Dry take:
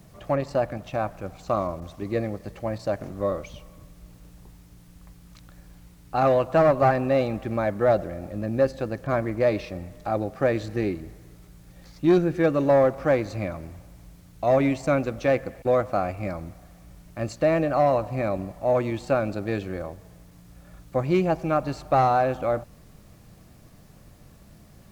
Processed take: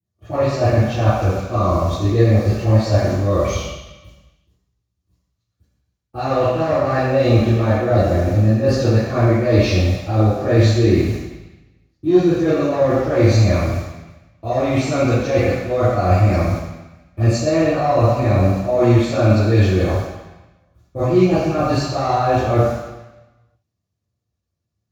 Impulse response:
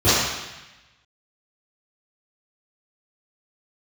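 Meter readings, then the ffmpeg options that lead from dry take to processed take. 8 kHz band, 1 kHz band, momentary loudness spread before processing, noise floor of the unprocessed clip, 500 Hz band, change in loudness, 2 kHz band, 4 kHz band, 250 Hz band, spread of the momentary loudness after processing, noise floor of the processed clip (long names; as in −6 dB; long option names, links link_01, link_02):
can't be measured, +4.0 dB, 13 LU, −51 dBFS, +5.5 dB, +7.5 dB, +6.0 dB, +13.5 dB, +9.0 dB, 9 LU, −77 dBFS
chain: -filter_complex "[0:a]agate=range=-46dB:threshold=-41dB:ratio=16:detection=peak,highshelf=frequency=2500:gain=10.5,areverse,acompressor=threshold=-28dB:ratio=12,areverse[link_01];[1:a]atrim=start_sample=2205[link_02];[link_01][link_02]afir=irnorm=-1:irlink=0,volume=-10.5dB"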